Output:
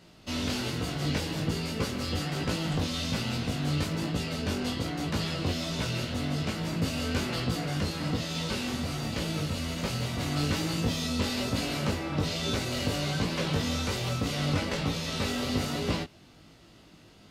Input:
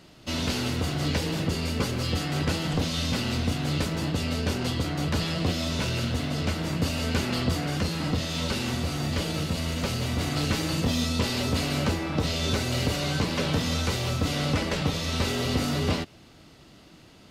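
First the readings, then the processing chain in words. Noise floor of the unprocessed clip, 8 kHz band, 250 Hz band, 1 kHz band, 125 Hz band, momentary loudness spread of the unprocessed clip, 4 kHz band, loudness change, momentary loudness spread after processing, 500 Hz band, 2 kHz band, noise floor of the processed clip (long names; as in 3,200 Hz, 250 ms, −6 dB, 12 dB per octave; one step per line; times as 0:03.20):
−52 dBFS, −3.0 dB, −2.5 dB, −3.0 dB, −3.5 dB, 2 LU, −3.0 dB, −3.0 dB, 3 LU, −3.0 dB, −3.0 dB, −55 dBFS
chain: chorus effect 1.2 Hz, delay 17.5 ms, depth 3.2 ms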